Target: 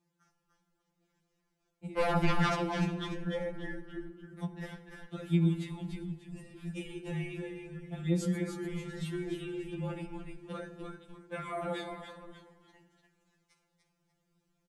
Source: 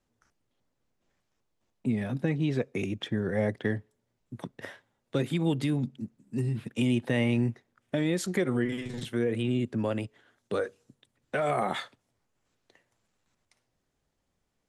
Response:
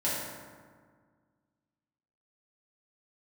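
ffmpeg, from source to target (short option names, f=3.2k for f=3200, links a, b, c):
-filter_complex "[0:a]highpass=56,lowshelf=f=250:g=8,asplit=2[a][b];[b]acompressor=threshold=-36dB:ratio=6,volume=1.5dB[c];[a][c]amix=inputs=2:normalize=0,alimiter=limit=-16dB:level=0:latency=1:release=406,asettb=1/sr,asplit=3[d][e][f];[d]atrim=end=1.984[g];[e]atrim=start=1.98:end=2.55,asetpts=PTS-STARTPTS,afade=t=in:d=0.004:c=qsin,afade=t=out:st=0.566:d=0.004:c=qsin,aeval=exprs='0.158*sin(PI/2*5.62*val(0)/0.158)':c=same[h];[f]atrim=start=2.546[i];[g][h]acrossfade=d=0.004:c1=hsin:c2=qsin[j];[j][i]acrossfade=d=0.004:c1=qsin:c2=hsin,asplit=5[k][l][m][n][o];[l]adelay=294,afreqshift=-92,volume=-5.5dB[p];[m]adelay=588,afreqshift=-184,volume=-14.6dB[q];[n]adelay=882,afreqshift=-276,volume=-23.7dB[r];[o]adelay=1176,afreqshift=-368,volume=-32.9dB[s];[k][p][q][r][s]amix=inputs=5:normalize=0,asplit=2[t][u];[1:a]atrim=start_sample=2205[v];[u][v]afir=irnorm=-1:irlink=0,volume=-14.5dB[w];[t][w]amix=inputs=2:normalize=0,afftfilt=real='re*2.83*eq(mod(b,8),0)':imag='im*2.83*eq(mod(b,8),0)':win_size=2048:overlap=0.75,volume=-8dB"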